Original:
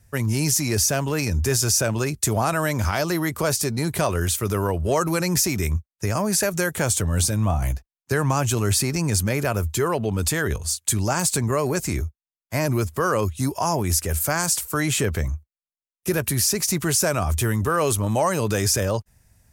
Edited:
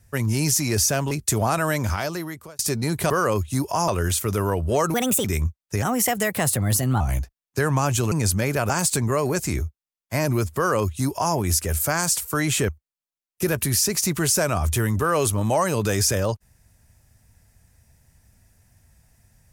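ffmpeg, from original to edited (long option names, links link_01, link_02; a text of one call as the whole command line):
ffmpeg -i in.wav -filter_complex "[0:a]asplit=12[link_01][link_02][link_03][link_04][link_05][link_06][link_07][link_08][link_09][link_10][link_11][link_12];[link_01]atrim=end=1.112[link_13];[link_02]atrim=start=2.058:end=3.54,asetpts=PTS-STARTPTS,afade=type=out:start_time=0.652:duration=0.83[link_14];[link_03]atrim=start=3.54:end=4.052,asetpts=PTS-STARTPTS,afade=type=in:duration=0.004:curve=hsin[link_15];[link_04]atrim=start=12.968:end=13.752[link_16];[link_05]atrim=start=4.048:end=5.114[link_17];[link_06]atrim=start=5.11:end=5.54,asetpts=PTS-STARTPTS,asetrate=62622,aresample=44100,atrim=end_sample=13354,asetpts=PTS-STARTPTS[link_18];[link_07]atrim=start=5.536:end=6.124[link_19];[link_08]atrim=start=6.12:end=7.54,asetpts=PTS-STARTPTS,asetrate=52920,aresample=44100[link_20];[link_09]atrim=start=7.536:end=8.652[link_21];[link_10]atrim=start=8.998:end=9.582[link_22];[link_11]atrim=start=11.098:end=15.092[link_23];[link_12]atrim=start=15.338[link_24];[link_14][link_15]concat=n=2:v=0:a=1[link_25];[link_13][link_25]acrossfade=duration=0.004:curve1=hsin:curve2=hsin[link_26];[link_26][link_16]acrossfade=duration=0.004:curve1=hsin:curve2=hsin[link_27];[link_27][link_17]acrossfade=duration=0.004:curve1=hsin:curve2=hsin[link_28];[link_28][link_18]acrossfade=duration=0.004:curve1=hsin:curve2=hsin[link_29];[link_29][link_19]acrossfade=duration=0.004:curve1=hsin:curve2=hsin[link_30];[link_30][link_20]acrossfade=duration=0.004:curve1=hsin:curve2=hsin[link_31];[link_31][link_21]acrossfade=duration=0.004:curve1=hsin:curve2=hsin[link_32];[link_32][link_22]acrossfade=duration=0.004:curve1=hsin:curve2=hsin[link_33];[link_33][link_23]acrossfade=duration=0.004:curve1=hsin:curve2=hsin[link_34];[link_34][link_24]acrossfade=duration=0.004:curve1=hsin:curve2=hsin" out.wav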